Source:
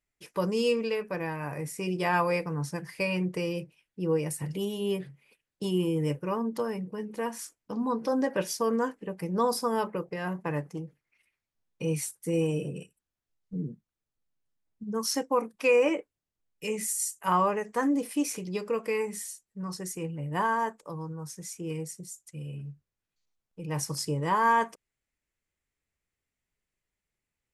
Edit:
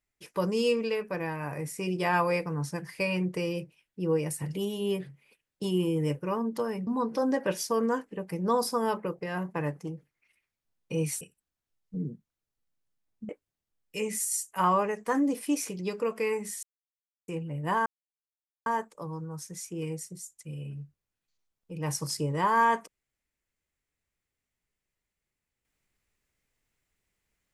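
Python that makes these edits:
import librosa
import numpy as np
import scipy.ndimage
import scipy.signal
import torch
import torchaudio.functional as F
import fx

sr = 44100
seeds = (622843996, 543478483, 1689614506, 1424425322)

y = fx.edit(x, sr, fx.cut(start_s=6.87, length_s=0.9),
    fx.cut(start_s=12.11, length_s=0.69),
    fx.cut(start_s=14.88, length_s=1.09),
    fx.silence(start_s=19.31, length_s=0.65),
    fx.insert_silence(at_s=20.54, length_s=0.8), tone=tone)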